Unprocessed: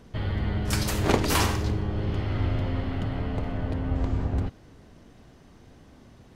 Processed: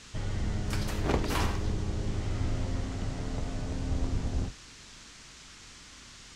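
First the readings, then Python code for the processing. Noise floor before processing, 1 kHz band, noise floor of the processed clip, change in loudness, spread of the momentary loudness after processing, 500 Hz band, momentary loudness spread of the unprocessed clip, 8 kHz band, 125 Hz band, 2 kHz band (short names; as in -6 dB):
-53 dBFS, -6.5 dB, -51 dBFS, -5.5 dB, 18 LU, -6.5 dB, 7 LU, -7.5 dB, -5.5 dB, -6.5 dB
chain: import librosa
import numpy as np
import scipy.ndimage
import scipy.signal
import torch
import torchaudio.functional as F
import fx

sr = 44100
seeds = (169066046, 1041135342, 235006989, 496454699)

y = fx.octave_divider(x, sr, octaves=2, level_db=0.0)
y = fx.high_shelf(y, sr, hz=5800.0, db=-8.5)
y = fx.dmg_noise_band(y, sr, seeds[0], low_hz=960.0, high_hz=7300.0, level_db=-45.0)
y = y * 10.0 ** (-6.5 / 20.0)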